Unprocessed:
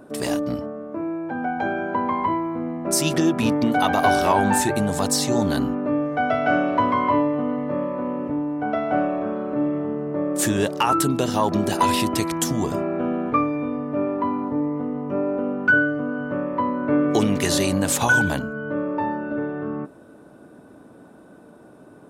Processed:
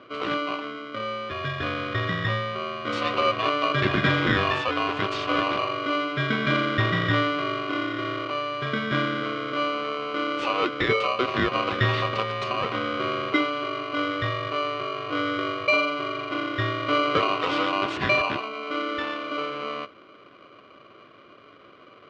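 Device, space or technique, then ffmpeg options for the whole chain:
ring modulator pedal into a guitar cabinet: -af "aeval=exprs='val(0)*sgn(sin(2*PI*880*n/s))':channel_layout=same,highpass=98,equalizer=frequency=110:width_type=q:width=4:gain=4,equalizer=frequency=360:width_type=q:width=4:gain=8,equalizer=frequency=680:width_type=q:width=4:gain=-8,equalizer=frequency=1700:width_type=q:width=4:gain=-5,lowpass=frequency=3400:width=0.5412,lowpass=frequency=3400:width=1.3066,volume=-2dB"

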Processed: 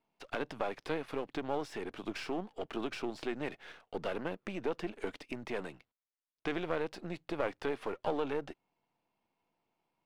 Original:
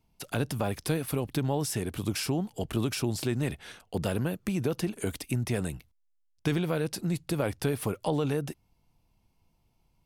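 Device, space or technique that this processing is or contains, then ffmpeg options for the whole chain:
crystal radio: -af "highpass=340,lowpass=2700,aeval=exprs='if(lt(val(0),0),0.447*val(0),val(0))':channel_layout=same"

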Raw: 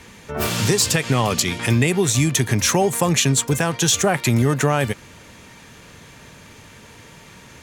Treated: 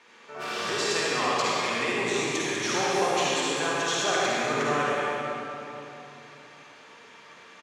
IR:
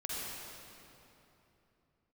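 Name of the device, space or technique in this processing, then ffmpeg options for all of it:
station announcement: -filter_complex "[0:a]highpass=430,lowpass=4900,equalizer=frequency=1200:width_type=o:width=0.53:gain=4,aecho=1:1:55.39|198.3:0.282|0.355[link_01];[1:a]atrim=start_sample=2205[link_02];[link_01][link_02]afir=irnorm=-1:irlink=0,volume=-7dB"

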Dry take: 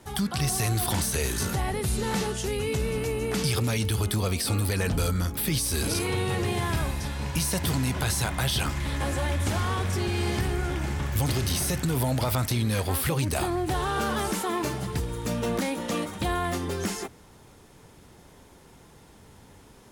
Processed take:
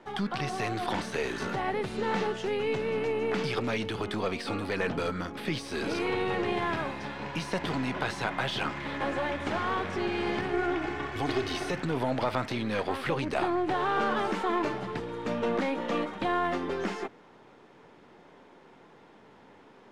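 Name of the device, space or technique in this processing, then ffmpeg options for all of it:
crystal radio: -filter_complex "[0:a]asettb=1/sr,asplit=3[link_01][link_02][link_03];[link_01]atrim=end=10.534[link_04];[link_02]atrim=start=10.53:end=11.71,asetpts=PTS-STARTPTS,afade=type=in:duration=0.004:curve=qsin,afade=type=out:start_time=1.176:duration=0.004:curve=qsin,aecho=1:1:2.7:0.67,atrim=end_sample=52038[link_05];[link_03]atrim=start=11.706[link_06];[link_04][link_05]acrossfade=duration=0.004:curve1=hsin:curve2=qsin[link_07];[link_07][link_06]acrossfade=duration=0.004:curve1=qsin:curve2=hsin,highpass=250,lowpass=2600,aeval=exprs='if(lt(val(0),0),0.708*val(0),val(0))':channel_layout=same,volume=2.5dB"

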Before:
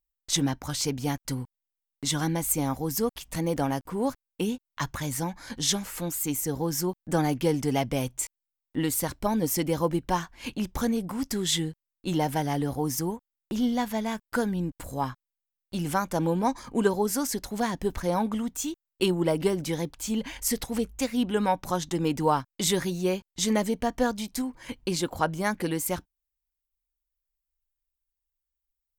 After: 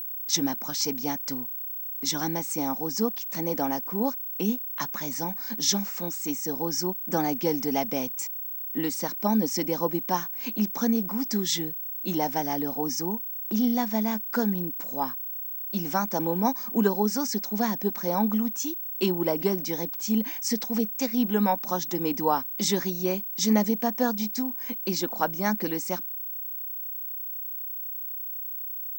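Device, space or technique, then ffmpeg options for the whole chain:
old television with a line whistle: -af "highpass=frequency=190:width=0.5412,highpass=frequency=190:width=1.3066,equalizer=frequency=210:width_type=q:width=4:gain=8,equalizer=frequency=810:width_type=q:width=4:gain=3,equalizer=frequency=3100:width_type=q:width=4:gain=-4,equalizer=frequency=5600:width_type=q:width=4:gain=9,lowpass=frequency=7200:width=0.5412,lowpass=frequency=7200:width=1.3066,aeval=exprs='val(0)+0.0316*sin(2*PI*15734*n/s)':channel_layout=same,volume=-1.5dB"

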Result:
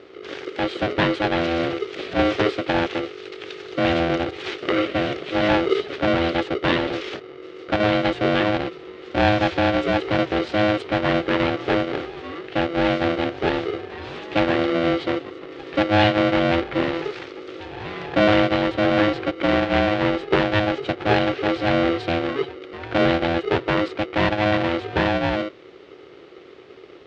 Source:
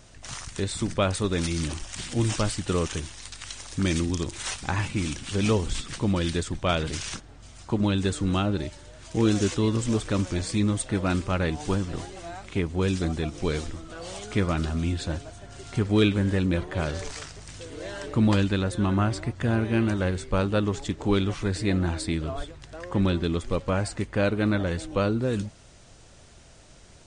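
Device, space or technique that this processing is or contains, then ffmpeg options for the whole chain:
ring modulator pedal into a guitar cabinet: -af "aeval=exprs='val(0)*sgn(sin(2*PI*420*n/s))':channel_layout=same,highpass=78,equalizer=frequency=210:width_type=q:width=4:gain=-7,equalizer=frequency=370:width_type=q:width=4:gain=8,equalizer=frequency=990:width_type=q:width=4:gain=-7,lowpass=frequency=3600:width=0.5412,lowpass=frequency=3600:width=1.3066,volume=5dB"

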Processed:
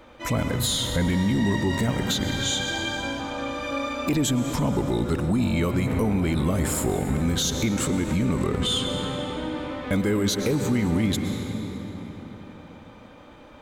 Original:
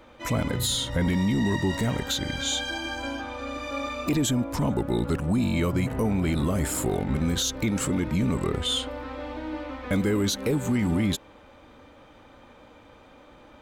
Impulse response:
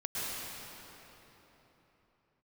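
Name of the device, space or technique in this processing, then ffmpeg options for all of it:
ducked reverb: -filter_complex "[0:a]asplit=3[link_01][link_02][link_03];[1:a]atrim=start_sample=2205[link_04];[link_02][link_04]afir=irnorm=-1:irlink=0[link_05];[link_03]apad=whole_len=600504[link_06];[link_05][link_06]sidechaincompress=threshold=-28dB:ratio=8:attack=16:release=105,volume=-8dB[link_07];[link_01][link_07]amix=inputs=2:normalize=0"

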